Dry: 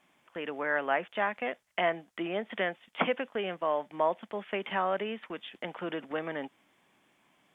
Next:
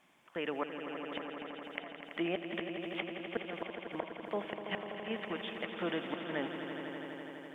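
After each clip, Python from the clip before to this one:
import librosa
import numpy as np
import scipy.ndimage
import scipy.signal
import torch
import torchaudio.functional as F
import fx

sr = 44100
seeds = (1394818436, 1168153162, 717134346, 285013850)

y = fx.gate_flip(x, sr, shuts_db=-23.0, range_db=-26)
y = fx.echo_swell(y, sr, ms=83, loudest=5, wet_db=-10.5)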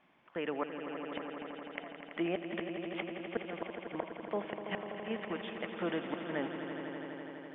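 y = fx.air_absorb(x, sr, metres=280.0)
y = F.gain(torch.from_numpy(y), 1.5).numpy()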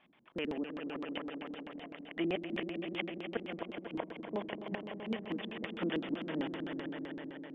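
y = fx.filter_lfo_lowpass(x, sr, shape='square', hz=7.8, low_hz=280.0, high_hz=3400.0, q=2.1)
y = F.gain(torch.from_numpy(y), -1.0).numpy()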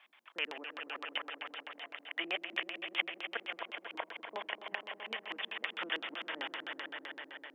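y = scipy.signal.sosfilt(scipy.signal.butter(2, 1100.0, 'highpass', fs=sr, output='sos'), x)
y = F.gain(torch.from_numpy(y), 7.0).numpy()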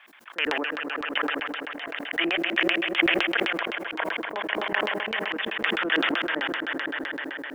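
y = fx.peak_eq(x, sr, hz=1600.0, db=7.5, octaves=0.65)
y = fx.sustainer(y, sr, db_per_s=22.0)
y = F.gain(torch.from_numpy(y), 7.0).numpy()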